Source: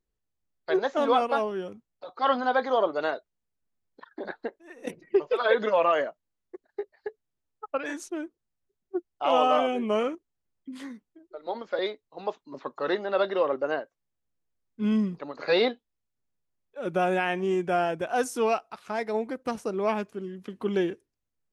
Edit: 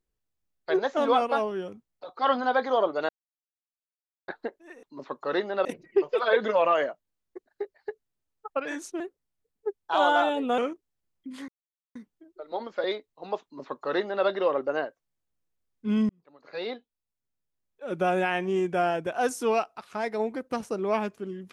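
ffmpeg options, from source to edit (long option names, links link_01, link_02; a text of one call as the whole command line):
ffmpeg -i in.wav -filter_complex "[0:a]asplit=9[link_01][link_02][link_03][link_04][link_05][link_06][link_07][link_08][link_09];[link_01]atrim=end=3.09,asetpts=PTS-STARTPTS,afade=type=out:start_time=3.086:duration=0.004:curve=hsin[link_10];[link_02]atrim=start=3.09:end=4.28,asetpts=PTS-STARTPTS,volume=0[link_11];[link_03]atrim=start=4.28:end=4.832,asetpts=PTS-STARTPTS,afade=type=in:duration=0.004:curve=hsin[link_12];[link_04]atrim=start=12.378:end=13.202[link_13];[link_05]atrim=start=4.828:end=8.184[link_14];[link_06]atrim=start=8.18:end=10,asetpts=PTS-STARTPTS,asetrate=50715,aresample=44100,atrim=end_sample=69793,asetpts=PTS-STARTPTS[link_15];[link_07]atrim=start=9.996:end=10.9,asetpts=PTS-STARTPTS,afade=type=out:start_time=0.9:duration=0.004:curve=hsin,apad=pad_dur=0.47[link_16];[link_08]atrim=start=10.9:end=15.04,asetpts=PTS-STARTPTS,afade=type=in:duration=0.004:curve=hsin,afade=type=out:start_time=4.136:duration=0.004:curve=hsin[link_17];[link_09]atrim=start=15.04,asetpts=PTS-STARTPTS,afade=type=in:duration=1.96[link_18];[link_10][link_11][link_12]concat=n=3:v=0:a=1[link_19];[link_19][link_13]acrossfade=duration=0.004:curve1=hsin:curve2=hsin[link_20];[link_20][link_14]acrossfade=duration=0.004:curve1=hsin:curve2=hsin[link_21];[link_21][link_15]acrossfade=duration=0.004:curve1=hsin:curve2=hsin[link_22];[link_16][link_17][link_18]concat=n=3:v=0:a=1[link_23];[link_22][link_23]acrossfade=duration=0.004:curve1=hsin:curve2=hsin" out.wav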